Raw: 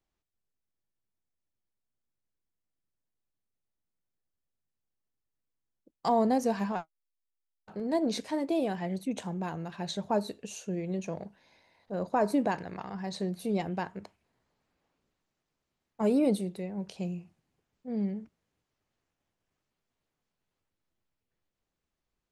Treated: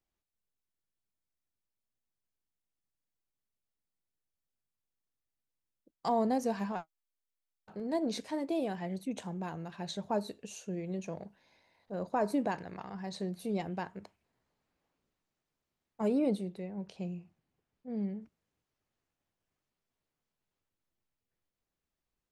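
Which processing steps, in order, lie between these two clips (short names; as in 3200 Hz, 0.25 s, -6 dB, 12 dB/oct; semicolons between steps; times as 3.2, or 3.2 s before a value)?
16.08–18.22 high shelf 7100 Hz -12 dB; gain -4 dB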